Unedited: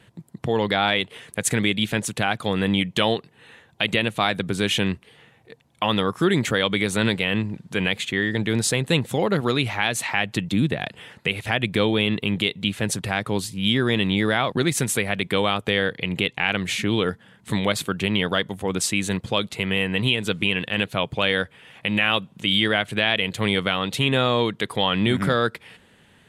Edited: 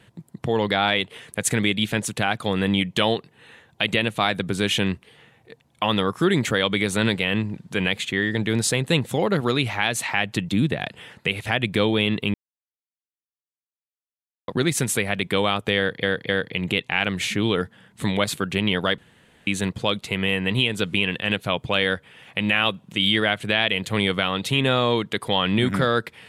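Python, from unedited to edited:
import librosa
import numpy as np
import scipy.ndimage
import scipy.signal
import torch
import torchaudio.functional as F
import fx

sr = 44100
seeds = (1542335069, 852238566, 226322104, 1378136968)

y = fx.edit(x, sr, fx.silence(start_s=12.34, length_s=2.14),
    fx.repeat(start_s=15.77, length_s=0.26, count=3),
    fx.room_tone_fill(start_s=18.46, length_s=0.49), tone=tone)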